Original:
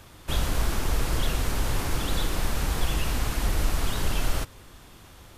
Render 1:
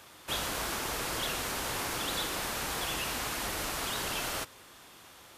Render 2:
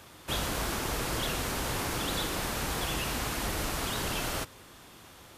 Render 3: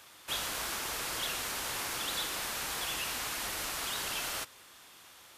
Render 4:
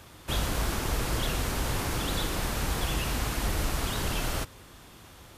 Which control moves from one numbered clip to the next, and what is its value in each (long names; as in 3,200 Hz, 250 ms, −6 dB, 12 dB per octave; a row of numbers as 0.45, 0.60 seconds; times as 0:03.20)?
high-pass filter, corner frequency: 550, 190, 1,400, 62 Hertz